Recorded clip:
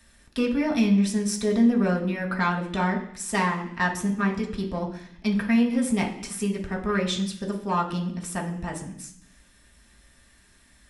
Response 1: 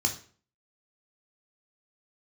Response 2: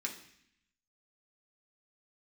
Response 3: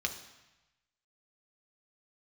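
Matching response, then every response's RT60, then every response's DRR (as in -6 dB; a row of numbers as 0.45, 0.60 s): 2; 0.45, 0.65, 1.0 s; 2.5, -1.0, 3.5 dB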